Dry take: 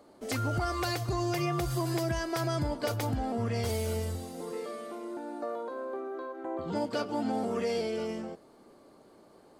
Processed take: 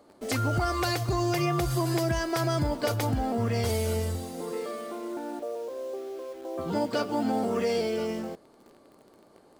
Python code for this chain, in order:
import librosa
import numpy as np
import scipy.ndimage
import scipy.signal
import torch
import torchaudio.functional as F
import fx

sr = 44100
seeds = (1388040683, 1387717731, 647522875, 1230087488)

p1 = fx.bandpass_q(x, sr, hz=480.0, q=2.3, at=(5.39, 6.58))
p2 = fx.quant_dither(p1, sr, seeds[0], bits=8, dither='none')
y = p1 + F.gain(torch.from_numpy(p2), -5.0).numpy()